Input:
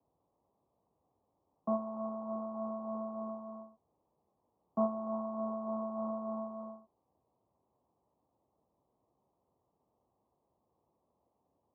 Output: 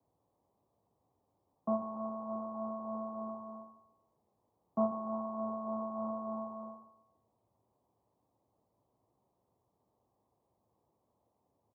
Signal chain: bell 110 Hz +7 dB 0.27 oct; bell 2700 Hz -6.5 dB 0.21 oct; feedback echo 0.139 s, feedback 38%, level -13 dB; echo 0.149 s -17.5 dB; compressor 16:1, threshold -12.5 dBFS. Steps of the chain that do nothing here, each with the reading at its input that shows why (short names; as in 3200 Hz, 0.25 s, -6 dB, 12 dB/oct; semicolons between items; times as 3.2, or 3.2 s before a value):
bell 2700 Hz: input band ends at 1100 Hz; compressor, threshold -12.5 dBFS: input peak -21.0 dBFS